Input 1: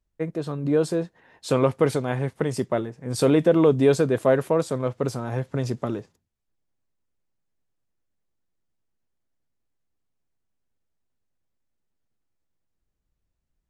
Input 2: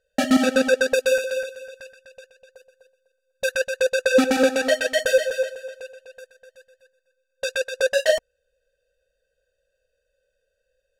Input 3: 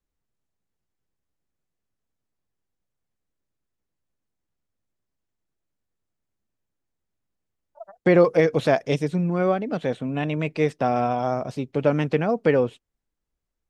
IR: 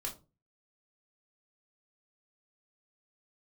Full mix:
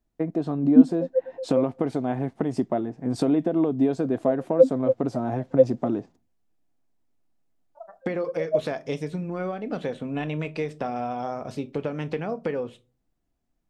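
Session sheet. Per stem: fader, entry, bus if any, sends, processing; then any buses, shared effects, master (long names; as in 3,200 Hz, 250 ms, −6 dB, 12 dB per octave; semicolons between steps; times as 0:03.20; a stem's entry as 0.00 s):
−3.5 dB, 0.00 s, no send, Bessel low-pass filter 6,400 Hz, order 2; downward compressor 4 to 1, threshold −27 dBFS, peak gain reduction 12.5 dB; hollow resonant body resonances 270/690 Hz, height 14 dB, ringing for 20 ms
+2.0 dB, 0.45 s, no send, every bin expanded away from the loudest bin 4 to 1
−3.0 dB, 0.00 s, send −6.5 dB, downward compressor 16 to 1, threshold −24 dBFS, peak gain reduction 14 dB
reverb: on, RT60 0.30 s, pre-delay 4 ms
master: no processing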